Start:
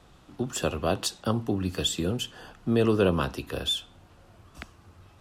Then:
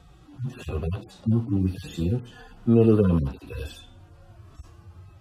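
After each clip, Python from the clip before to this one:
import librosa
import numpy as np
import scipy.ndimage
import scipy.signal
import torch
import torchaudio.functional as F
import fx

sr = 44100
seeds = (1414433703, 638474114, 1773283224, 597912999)

y = fx.hpss_only(x, sr, part='harmonic')
y = fx.low_shelf(y, sr, hz=420.0, db=6.5)
y = y * 10.0 ** (1.5 / 20.0)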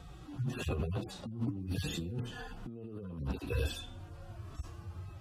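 y = fx.over_compress(x, sr, threshold_db=-32.0, ratio=-1.0)
y = y * 10.0 ** (-5.5 / 20.0)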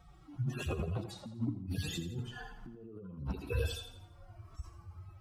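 y = fx.bin_expand(x, sr, power=1.5)
y = fx.echo_feedback(y, sr, ms=84, feedback_pct=45, wet_db=-11.0)
y = y * 10.0 ** (1.5 / 20.0)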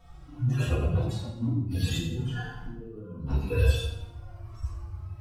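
y = fx.room_shoebox(x, sr, seeds[0], volume_m3=140.0, walls='mixed', distance_m=1.8)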